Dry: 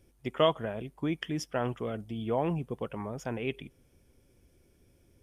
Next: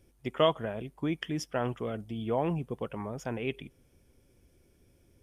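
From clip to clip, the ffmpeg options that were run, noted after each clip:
ffmpeg -i in.wav -af anull out.wav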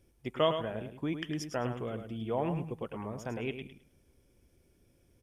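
ffmpeg -i in.wav -af "aecho=1:1:106|212|318:0.398|0.0836|0.0176,volume=-3dB" out.wav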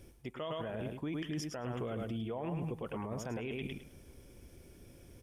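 ffmpeg -i in.wav -af "areverse,acompressor=threshold=-41dB:ratio=6,areverse,alimiter=level_in=17.5dB:limit=-24dB:level=0:latency=1:release=37,volume=-17.5dB,volume=11dB" out.wav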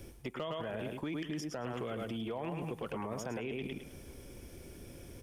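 ffmpeg -i in.wav -filter_complex "[0:a]acrossover=split=220|1300[link_01][link_02][link_03];[link_01]acompressor=threshold=-55dB:ratio=4[link_04];[link_02]acompressor=threshold=-45dB:ratio=4[link_05];[link_03]acompressor=threshold=-53dB:ratio=4[link_06];[link_04][link_05][link_06]amix=inputs=3:normalize=0,acrossover=split=4500[link_07][link_08];[link_07]aeval=exprs='clip(val(0),-1,0.01)':channel_layout=same[link_09];[link_09][link_08]amix=inputs=2:normalize=0,volume=7dB" out.wav

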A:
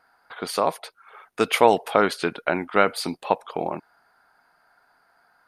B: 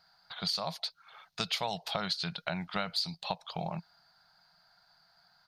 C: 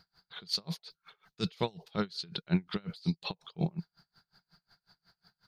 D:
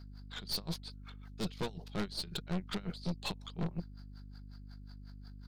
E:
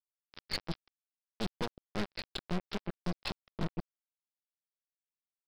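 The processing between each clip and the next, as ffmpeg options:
ffmpeg -i in.wav -af "firequalizer=gain_entry='entry(110,0);entry(170,6);entry(260,-19);entry(430,-19);entry(640,-6);entry(1100,-9);entry(2400,-5);entry(4200,12);entry(9800,-12);entry(15000,-1)':delay=0.05:min_phase=1,acompressor=threshold=-31dB:ratio=4" out.wav
ffmpeg -i in.wav -af "lowshelf=frequency=510:width_type=q:width=3:gain=8.5,aeval=exprs='val(0)*pow(10,-32*(0.5-0.5*cos(2*PI*5.5*n/s))/20)':channel_layout=same,volume=4dB" out.wav
ffmpeg -i in.wav -af "aeval=exprs='val(0)+0.00355*(sin(2*PI*50*n/s)+sin(2*PI*2*50*n/s)/2+sin(2*PI*3*50*n/s)/3+sin(2*PI*4*50*n/s)/4+sin(2*PI*5*50*n/s)/5)':channel_layout=same,aeval=exprs='(tanh(63.1*val(0)+0.7)-tanh(0.7))/63.1':channel_layout=same,volume=4.5dB" out.wav
ffmpeg -i in.wav -af "aresample=11025,acrusher=bits=4:mix=0:aa=0.5,aresample=44100,asoftclip=type=hard:threshold=-28dB,volume=2.5dB" out.wav

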